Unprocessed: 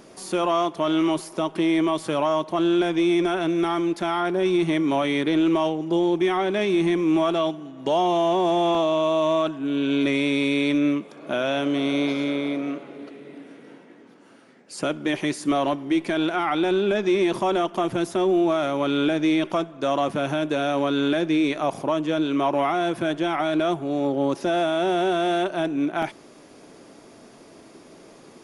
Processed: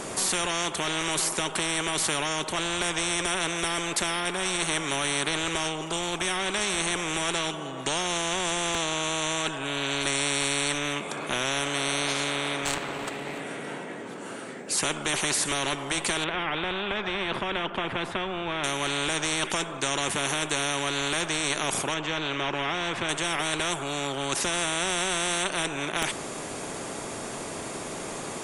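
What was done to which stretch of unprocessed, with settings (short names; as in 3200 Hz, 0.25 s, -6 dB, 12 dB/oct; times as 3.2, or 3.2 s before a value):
12.65–13.4 self-modulated delay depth 0.79 ms
16.24–18.64 air absorption 410 m
21.94–23.09 air absorption 150 m
whole clip: thirty-one-band EQ 400 Hz +6 dB, 5000 Hz -6 dB, 8000 Hz +12 dB; spectral compressor 4:1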